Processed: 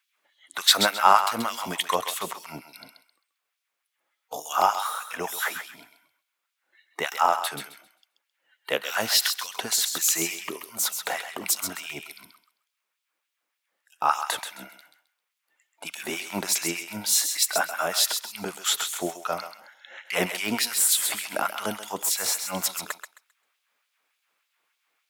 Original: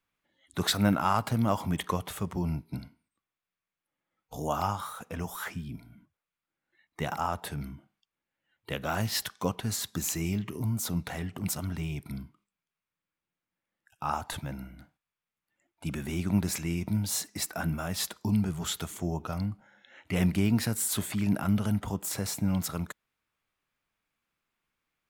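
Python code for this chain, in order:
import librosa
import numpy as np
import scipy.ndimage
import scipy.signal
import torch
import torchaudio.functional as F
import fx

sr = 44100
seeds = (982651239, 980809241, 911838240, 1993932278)

y = fx.filter_lfo_highpass(x, sr, shape='sine', hz=3.4, low_hz=430.0, high_hz=3700.0, q=1.2)
y = fx.echo_thinned(y, sr, ms=132, feedback_pct=25, hz=1000.0, wet_db=-7.0)
y = y * 10.0 ** (9.0 / 20.0)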